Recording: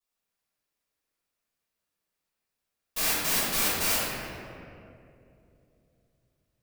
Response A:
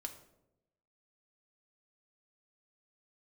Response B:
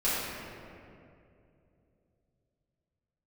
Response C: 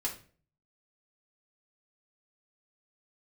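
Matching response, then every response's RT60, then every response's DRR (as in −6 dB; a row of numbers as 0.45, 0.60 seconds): B; 0.90, 2.7, 0.45 seconds; 3.0, −12.0, −4.0 decibels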